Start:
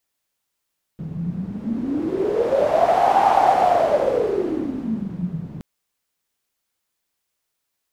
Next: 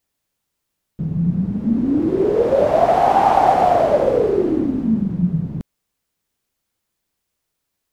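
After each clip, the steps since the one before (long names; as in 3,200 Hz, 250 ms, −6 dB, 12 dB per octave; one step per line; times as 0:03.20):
low-shelf EQ 390 Hz +9.5 dB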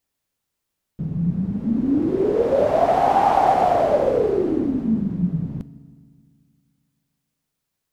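convolution reverb RT60 1.9 s, pre-delay 4 ms, DRR 14.5 dB
level −3 dB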